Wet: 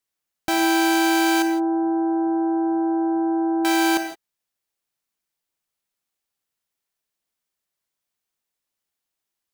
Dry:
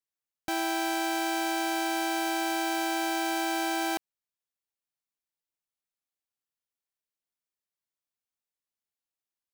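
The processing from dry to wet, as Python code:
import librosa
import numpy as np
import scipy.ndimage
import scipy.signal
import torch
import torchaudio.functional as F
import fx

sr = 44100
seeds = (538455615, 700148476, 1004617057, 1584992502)

y = fx.gaussian_blur(x, sr, sigma=10.0, at=(1.42, 3.65))
y = fx.rev_gated(y, sr, seeds[0], gate_ms=190, shape='flat', drr_db=8.0)
y = y * 10.0 ** (8.5 / 20.0)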